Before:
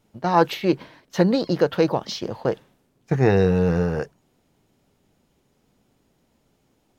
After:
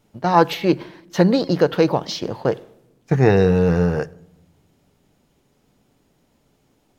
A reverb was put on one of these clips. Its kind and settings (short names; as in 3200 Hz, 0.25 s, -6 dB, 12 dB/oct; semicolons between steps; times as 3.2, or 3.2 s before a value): shoebox room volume 2800 m³, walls furnished, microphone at 0.34 m; gain +3 dB